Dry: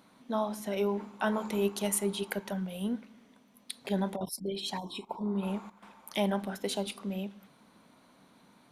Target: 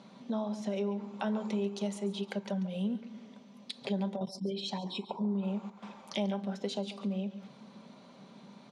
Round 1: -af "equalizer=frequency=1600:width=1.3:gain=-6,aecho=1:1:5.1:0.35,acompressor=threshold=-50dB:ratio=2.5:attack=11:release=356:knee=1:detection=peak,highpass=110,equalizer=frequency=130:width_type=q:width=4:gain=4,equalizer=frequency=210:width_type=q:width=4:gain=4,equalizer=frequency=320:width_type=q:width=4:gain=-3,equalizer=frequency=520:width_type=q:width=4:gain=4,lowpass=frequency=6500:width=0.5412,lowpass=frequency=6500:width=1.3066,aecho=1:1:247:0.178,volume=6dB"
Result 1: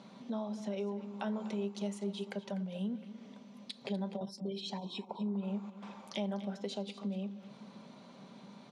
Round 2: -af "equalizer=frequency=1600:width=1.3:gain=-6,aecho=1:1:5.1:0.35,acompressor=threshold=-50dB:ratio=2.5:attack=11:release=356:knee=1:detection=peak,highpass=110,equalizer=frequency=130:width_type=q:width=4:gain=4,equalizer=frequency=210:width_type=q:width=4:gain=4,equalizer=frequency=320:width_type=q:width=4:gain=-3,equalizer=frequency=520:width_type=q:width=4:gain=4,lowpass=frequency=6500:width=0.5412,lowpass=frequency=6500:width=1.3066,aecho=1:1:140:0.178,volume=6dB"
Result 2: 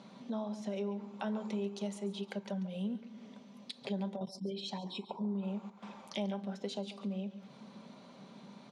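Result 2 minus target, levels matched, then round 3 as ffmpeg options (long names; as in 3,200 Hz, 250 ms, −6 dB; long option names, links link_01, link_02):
downward compressor: peak gain reduction +4 dB
-af "equalizer=frequency=1600:width=1.3:gain=-6,aecho=1:1:5.1:0.35,acompressor=threshold=-43.5dB:ratio=2.5:attack=11:release=356:knee=1:detection=peak,highpass=110,equalizer=frequency=130:width_type=q:width=4:gain=4,equalizer=frequency=210:width_type=q:width=4:gain=4,equalizer=frequency=320:width_type=q:width=4:gain=-3,equalizer=frequency=520:width_type=q:width=4:gain=4,lowpass=frequency=6500:width=0.5412,lowpass=frequency=6500:width=1.3066,aecho=1:1:140:0.178,volume=6dB"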